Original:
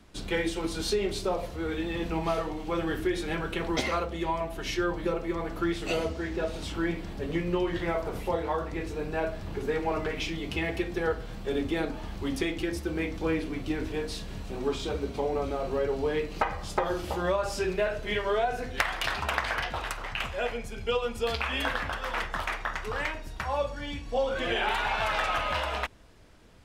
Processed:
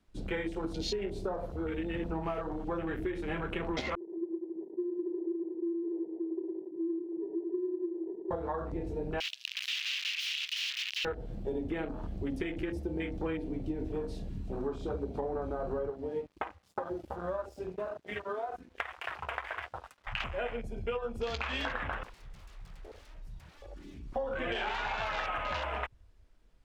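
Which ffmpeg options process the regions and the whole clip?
-filter_complex "[0:a]asettb=1/sr,asplit=3[s0][s1][s2];[s0]atrim=end=3.954[s3];[s1]atrim=start=3.95:end=8.31,asetpts=PTS-STARTPTS,afade=t=in:d=0.004:c=qsin,afade=t=out:st=4.356:d=0.004:c=qsin,asuperpass=centerf=360:order=8:qfactor=3.6,aecho=1:1:110|203.5|283|350.5|407.9:0.631|0.398|0.251|0.158|0.1,atrim=end_sample=192276[s4];[s2]atrim=start=8.306[s5];[s3][s4]acrossfade=d=0.004:c1=hsin:c2=qsin[s6];[s6][s5]acrossfade=d=0.004:c1=qsin:c2=hsin,asettb=1/sr,asplit=3[s7][s8][s9];[s7]atrim=end=9.204[s10];[s8]atrim=start=9.2:end=11.05,asetpts=PTS-STARTPTS,afade=t=in:d=0.004:c=qsin,afade=t=out:st=1.846:d=0.004:c=qsin,highshelf=f=4800:g=11.5,aeval=exprs='(mod(26.6*val(0)+1,2)-1)/26.6':c=same,highpass=f=2800:t=q:w=3.7[s11];[s9]atrim=start=11.046[s12];[s10][s11]acrossfade=d=0.004:c1=hsin:c2=qsin[s13];[s13][s12]acrossfade=d=0.004:c1=qsin:c2=hsin,asettb=1/sr,asplit=3[s14][s15][s16];[s14]atrim=end=15.904[s17];[s15]atrim=start=15.9:end=20.07,asetpts=PTS-STARTPTS,afade=t=in:d=0.004:c=qsin,afade=t=out:st=4.166:d=0.004:c=qsin,highpass=f=62:w=0.5412,highpass=f=62:w=1.3066,flanger=delay=2.7:depth=1.7:regen=52:speed=1.9:shape=triangular,aeval=exprs='sgn(val(0))*max(abs(val(0))-0.00708,0)':c=same[s18];[s16]atrim=start=20.066[s19];[s17][s18]acrossfade=d=0.004:c1=hsin:c2=qsin[s20];[s20][s19]acrossfade=d=0.004:c1=qsin:c2=hsin,asettb=1/sr,asplit=3[s21][s22][s23];[s21]atrim=end=22.034[s24];[s22]atrim=start=22.03:end=24.16,asetpts=PTS-STARTPTS,afade=t=in:d=0.004:c=qsin,afade=t=out:st=2.126:d=0.004:c=qsin,acrossover=split=1300|3900[s25][s26][s27];[s25]acompressor=threshold=0.0178:ratio=4[s28];[s26]acompressor=threshold=0.00708:ratio=4[s29];[s27]acompressor=threshold=0.00178:ratio=4[s30];[s28][s29][s30]amix=inputs=3:normalize=0,aeval=exprs='0.0119*(abs(mod(val(0)/0.0119+3,4)-2)-1)':c=same[s31];[s23]atrim=start=24.156[s32];[s24][s31]acrossfade=d=0.004:c1=hsin:c2=qsin[s33];[s33][s32]acrossfade=d=0.004:c1=qsin:c2=hsin,afwtdn=0.0141,acompressor=threshold=0.0282:ratio=6"

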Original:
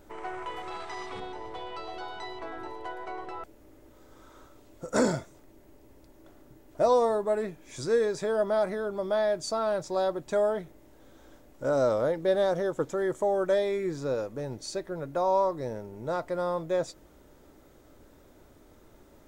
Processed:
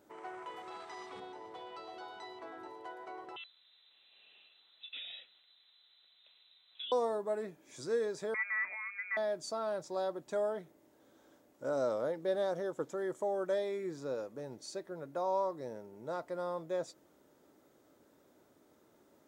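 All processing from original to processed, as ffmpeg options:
-filter_complex "[0:a]asettb=1/sr,asplit=3[s0][s1][s2];[s0]atrim=end=3.364[s3];[s1]atrim=start=3.36:end=6.92,asetpts=PTS-STARTPTS,afade=t=in:d=0.004:c=qsin,afade=t=out:st=3.556:d=0.004:c=qsin,acompressor=threshold=0.0282:ratio=6:attack=3.2:release=140:knee=1:detection=peak,tiltshelf=f=750:g=-5.5,lowpass=f=3400:t=q:w=0.5098,lowpass=f=3400:t=q:w=0.6013,lowpass=f=3400:t=q:w=0.9,lowpass=f=3400:t=q:w=2.563,afreqshift=-4000[s4];[s2]atrim=start=6.916[s5];[s3][s4]acrossfade=d=0.004:c1=hsin:c2=qsin[s6];[s6][s5]acrossfade=d=0.004:c1=qsin:c2=hsin,asettb=1/sr,asplit=3[s7][s8][s9];[s7]atrim=end=8.344[s10];[s8]atrim=start=8.34:end=9.17,asetpts=PTS-STARTPTS,afade=t=in:d=0.004:c=qsin,afade=t=out:st=0.826:d=0.004:c=qsin,equalizer=f=350:w=5.4:g=-7.5,lowpass=f=2200:t=q:w=0.5098,lowpass=f=2200:t=q:w=0.6013,lowpass=f=2200:t=q:w=0.9,lowpass=f=2200:t=q:w=2.563,afreqshift=-2600[s11];[s9]atrim=start=9.166[s12];[s10][s11]acrossfade=d=0.004:c1=hsin:c2=qsin[s13];[s13][s12]acrossfade=d=0.004:c1=qsin:c2=hsin,highpass=170,equalizer=f=2400:t=o:w=0.77:g=-2,volume=0.398"

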